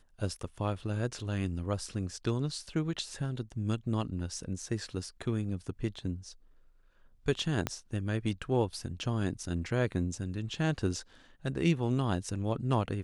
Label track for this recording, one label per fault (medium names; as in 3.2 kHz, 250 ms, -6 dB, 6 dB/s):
7.670000	7.670000	pop -15 dBFS